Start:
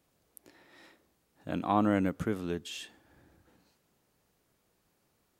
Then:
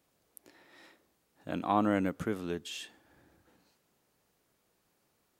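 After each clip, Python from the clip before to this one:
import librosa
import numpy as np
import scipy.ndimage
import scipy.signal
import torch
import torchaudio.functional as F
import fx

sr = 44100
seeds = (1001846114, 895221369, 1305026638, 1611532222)

y = fx.low_shelf(x, sr, hz=170.0, db=-6.0)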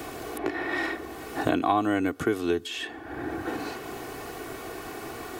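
y = x + 0.68 * np.pad(x, (int(2.7 * sr / 1000.0), 0))[:len(x)]
y = fx.band_squash(y, sr, depth_pct=100)
y = F.gain(torch.from_numpy(y), 7.5).numpy()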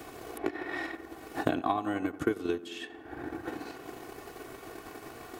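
y = fx.echo_tape(x, sr, ms=89, feedback_pct=80, wet_db=-10, lp_hz=1800.0, drive_db=7.0, wow_cents=18)
y = fx.transient(y, sr, attack_db=8, sustain_db=-6)
y = F.gain(torch.from_numpy(y), -8.5).numpy()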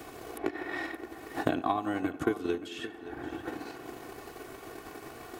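y = x + 10.0 ** (-14.0 / 20.0) * np.pad(x, (int(573 * sr / 1000.0), 0))[:len(x)]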